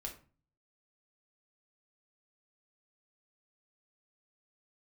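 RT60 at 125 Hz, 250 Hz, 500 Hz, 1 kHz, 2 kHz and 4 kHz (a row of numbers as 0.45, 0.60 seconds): 0.75, 0.55, 0.40, 0.40, 0.35, 0.25 seconds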